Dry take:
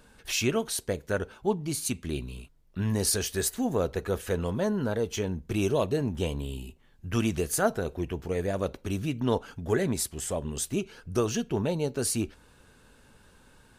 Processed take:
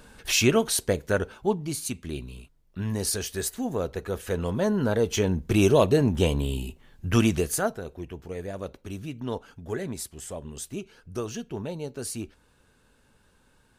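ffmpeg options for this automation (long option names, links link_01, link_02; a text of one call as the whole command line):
ffmpeg -i in.wav -af "volume=14.5dB,afade=type=out:start_time=0.82:duration=1.06:silence=0.421697,afade=type=in:start_time=4.13:duration=1.28:silence=0.375837,afade=type=out:start_time=7.11:duration=0.66:silence=0.237137" out.wav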